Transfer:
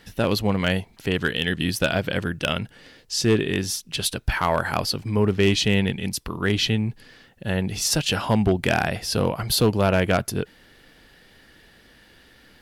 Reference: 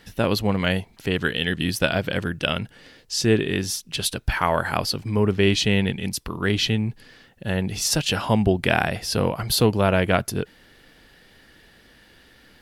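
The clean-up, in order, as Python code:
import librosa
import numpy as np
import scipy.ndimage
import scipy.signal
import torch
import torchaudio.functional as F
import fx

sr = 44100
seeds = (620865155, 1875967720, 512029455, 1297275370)

y = fx.fix_declip(x, sr, threshold_db=-11.5)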